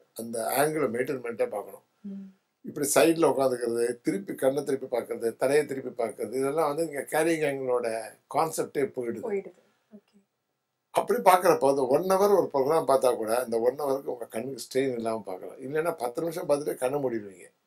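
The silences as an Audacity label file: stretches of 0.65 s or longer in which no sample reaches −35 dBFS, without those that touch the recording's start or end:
9.470000	10.950000	silence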